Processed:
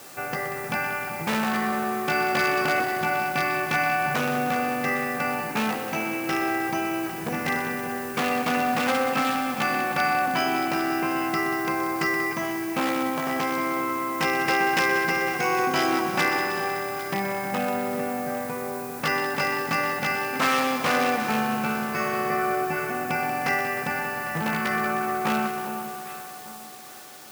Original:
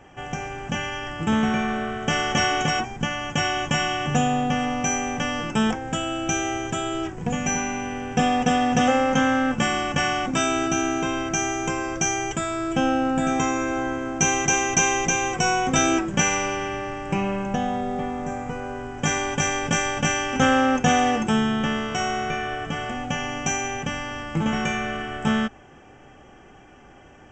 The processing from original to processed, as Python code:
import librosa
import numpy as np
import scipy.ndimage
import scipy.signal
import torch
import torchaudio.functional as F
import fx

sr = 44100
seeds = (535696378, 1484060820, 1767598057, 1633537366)

p1 = fx.formant_shift(x, sr, semitones=-3)
p2 = fx.rider(p1, sr, range_db=10, speed_s=2.0)
p3 = p1 + F.gain(torch.from_numpy(p2), -2.0).numpy()
p4 = scipy.signal.sosfilt(scipy.signal.butter(2, 1700.0, 'lowpass', fs=sr, output='sos'), p3)
p5 = fx.low_shelf(p4, sr, hz=180.0, db=4.5)
p6 = 10.0 ** (-9.5 / 20.0) * (np.abs((p5 / 10.0 ** (-9.5 / 20.0) + 3.0) % 4.0 - 2.0) - 1.0)
p7 = scipy.signal.sosfilt(scipy.signal.butter(2, 120.0, 'highpass', fs=sr, output='sos'), p6)
p8 = fx.echo_alternate(p7, sr, ms=401, hz=1100.0, feedback_pct=53, wet_db=-10.0)
p9 = fx.quant_dither(p8, sr, seeds[0], bits=8, dither='none')
p10 = fx.tilt_eq(p9, sr, slope=4.0)
p11 = fx.echo_heads(p10, sr, ms=62, heads='second and third', feedback_pct=73, wet_db=-11.5)
y = F.gain(torch.from_numpy(p11), -4.5).numpy()